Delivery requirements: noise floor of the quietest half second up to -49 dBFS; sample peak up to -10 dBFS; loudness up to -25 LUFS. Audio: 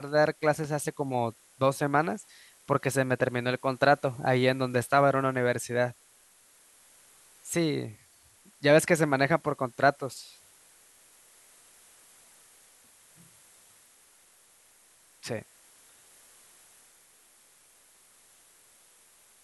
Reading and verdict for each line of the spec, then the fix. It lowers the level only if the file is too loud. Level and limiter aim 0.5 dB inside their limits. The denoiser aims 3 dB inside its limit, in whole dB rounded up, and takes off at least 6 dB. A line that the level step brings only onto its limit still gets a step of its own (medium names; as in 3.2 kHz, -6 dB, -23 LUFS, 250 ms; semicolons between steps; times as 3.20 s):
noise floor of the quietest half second -60 dBFS: pass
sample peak -7.5 dBFS: fail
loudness -27.0 LUFS: pass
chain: peak limiter -10.5 dBFS